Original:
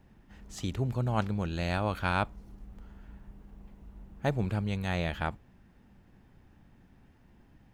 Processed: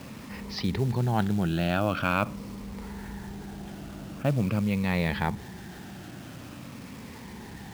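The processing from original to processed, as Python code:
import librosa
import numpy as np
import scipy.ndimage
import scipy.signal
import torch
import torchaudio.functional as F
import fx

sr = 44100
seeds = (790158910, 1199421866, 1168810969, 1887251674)

y = fx.spec_ripple(x, sr, per_octave=0.91, drift_hz=-0.45, depth_db=9)
y = scipy.signal.sosfilt(scipy.signal.butter(2, 110.0, 'highpass', fs=sr, output='sos'), y)
y = fx.dynamic_eq(y, sr, hz=170.0, q=0.82, threshold_db=-44.0, ratio=4.0, max_db=6)
y = scipy.signal.sosfilt(scipy.signal.ellip(4, 1.0, 40, 5400.0, 'lowpass', fs=sr, output='sos'), y)
y = fx.quant_companded(y, sr, bits=6)
y = fx.env_flatten(y, sr, amount_pct=50)
y = y * librosa.db_to_amplitude(-1.0)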